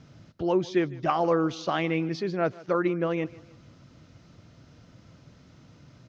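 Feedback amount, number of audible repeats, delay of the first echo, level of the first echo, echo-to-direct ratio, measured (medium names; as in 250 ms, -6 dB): 43%, 2, 153 ms, -21.0 dB, -20.0 dB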